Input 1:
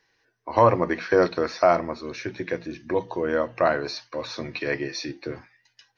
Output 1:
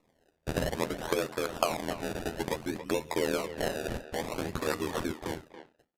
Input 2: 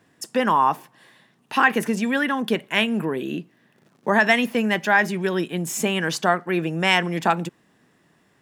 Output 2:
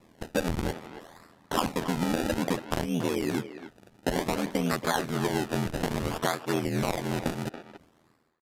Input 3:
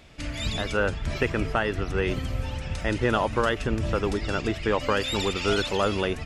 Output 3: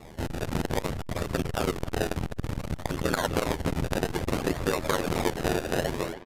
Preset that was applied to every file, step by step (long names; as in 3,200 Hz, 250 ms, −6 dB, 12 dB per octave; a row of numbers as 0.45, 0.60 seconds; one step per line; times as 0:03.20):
fade-out on the ending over 0.77 s
downward compressor 10 to 1, threshold −26 dBFS
sample-and-hold swept by an LFO 28×, swing 100% 0.58 Hz
ring modulation 41 Hz
downsampling to 32,000 Hz
far-end echo of a speakerphone 280 ms, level −11 dB
saturating transformer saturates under 400 Hz
normalise the peak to −9 dBFS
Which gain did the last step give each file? +3.0, +5.5, +8.5 decibels